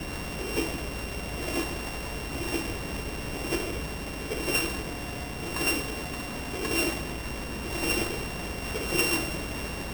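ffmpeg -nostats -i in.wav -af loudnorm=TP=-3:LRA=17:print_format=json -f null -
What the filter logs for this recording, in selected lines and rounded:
"input_i" : "-30.3",
"input_tp" : "-10.0",
"input_lra" : "3.2",
"input_thresh" : "-40.3",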